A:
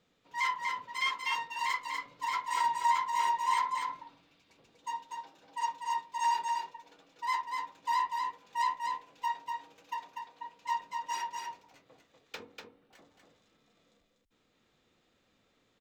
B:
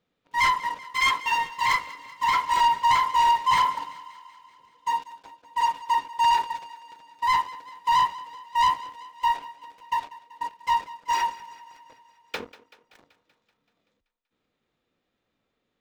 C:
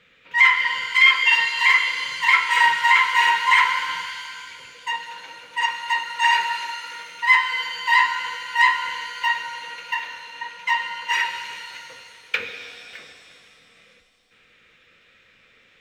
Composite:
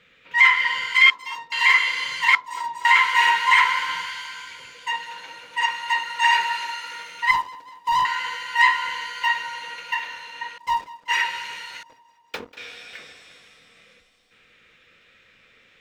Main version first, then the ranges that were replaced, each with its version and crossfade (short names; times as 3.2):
C
1.1–1.52 from A
2.35–2.85 from A
7.31–8.05 from B
10.58–11.08 from B
11.83–12.57 from B